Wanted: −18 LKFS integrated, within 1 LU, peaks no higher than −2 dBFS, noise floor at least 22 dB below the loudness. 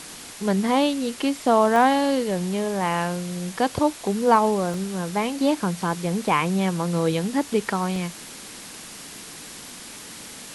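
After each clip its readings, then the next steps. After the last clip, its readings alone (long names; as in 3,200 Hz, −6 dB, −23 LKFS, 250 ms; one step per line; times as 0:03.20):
number of dropouts 3; longest dropout 1.5 ms; background noise floor −40 dBFS; target noise floor −45 dBFS; integrated loudness −23.0 LKFS; sample peak −4.5 dBFS; target loudness −18.0 LKFS
→ repair the gap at 0:01.76/0:04.74/0:07.96, 1.5 ms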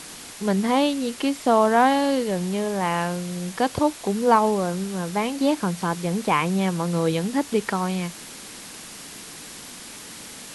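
number of dropouts 0; background noise floor −40 dBFS; target noise floor −45 dBFS
→ noise reduction from a noise print 6 dB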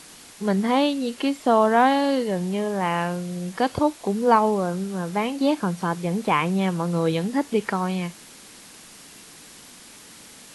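background noise floor −46 dBFS; integrated loudness −23.0 LKFS; sample peak −4.5 dBFS; target loudness −18.0 LKFS
→ level +5 dB
brickwall limiter −2 dBFS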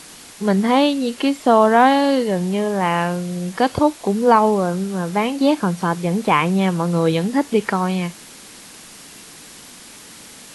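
integrated loudness −18.0 LKFS; sample peak −2.0 dBFS; background noise floor −41 dBFS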